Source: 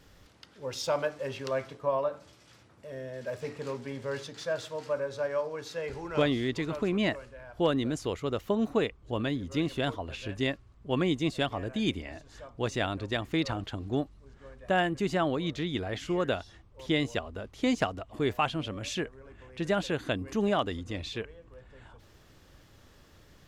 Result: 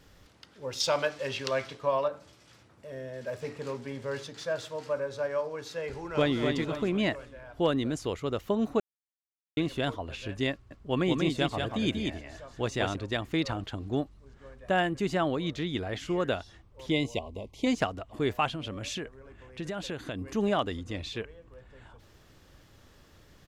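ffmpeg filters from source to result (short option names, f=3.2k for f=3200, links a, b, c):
-filter_complex "[0:a]asettb=1/sr,asplit=3[a][b][c];[a]atrim=end=0.804[d];[b]atrim=start=0.8:end=2.08,asetpts=PTS-STARTPTS,afade=t=in:d=0.004:c=qsin,afade=t=out:st=1.276:d=0.004:c=qsin,equalizer=f=3.9k:t=o:w=2.4:g=9[e];[c]atrim=start=2.076[f];[d][e]acrossfade=d=0.004:c1=hsin:c2=qsin[g];[g][f]acrossfade=d=0.004:c1=qsin:c2=hsin,asplit=2[h][i];[i]afade=t=in:st=5.94:d=0.01,afade=t=out:st=6.39:d=0.01,aecho=0:1:250|500|750|1000|1250:0.530884|0.212354|0.0849415|0.0339766|0.0135906[j];[h][j]amix=inputs=2:normalize=0,asettb=1/sr,asplit=3[k][l][m];[k]atrim=end=10.524[n];[l]atrim=start=10.52:end=12.96,asetpts=PTS-STARTPTS,afade=t=in:d=0.004:c=qsin,afade=t=out:st=2.436:d=0.004:c=qsin,aecho=1:1:187:0.631,atrim=end_sample=107604[o];[m]atrim=start=12.956[p];[n][o]acrossfade=d=0.004:c1=hsin:c2=qsin[q];[q][p]acrossfade=d=0.004:c1=qsin:c2=hsin,asplit=3[r][s][t];[r]afade=t=out:st=16.9:d=0.02[u];[s]asuperstop=centerf=1500:order=20:qfactor=1.7,afade=t=in:st=16.9:d=0.02,afade=t=out:st=17.65:d=0.02[v];[t]afade=t=in:st=17.65:d=0.02[w];[u][v][w]amix=inputs=3:normalize=0,asettb=1/sr,asplit=3[x][y][z];[x]atrim=end=18.474[aa];[y]atrim=start=18.47:end=20.18,asetpts=PTS-STARTPTS,afade=t=in:d=0.004:c=qsin,afade=t=out:st=1.706:d=0.004:c=qsin,acompressor=threshold=-31dB:ratio=6:attack=3.2:release=140:knee=1:detection=peak[ab];[z]atrim=start=20.176[ac];[aa][ab]acrossfade=d=0.004:c1=hsin:c2=qsin[ad];[ad][ac]acrossfade=d=0.004:c1=qsin:c2=hsin,asplit=3[ae][af][ag];[ae]atrim=end=8.8,asetpts=PTS-STARTPTS,afade=t=out:st=8.796:d=0.004:c=hsin[ah];[af]atrim=start=8.8:end=9.57,asetpts=PTS-STARTPTS,volume=0[ai];[ag]atrim=start=9.57,asetpts=PTS-STARTPTS,afade=t=in:d=0.004:c=hsin[aj];[ah][ai][aj]concat=n=3:v=0:a=1"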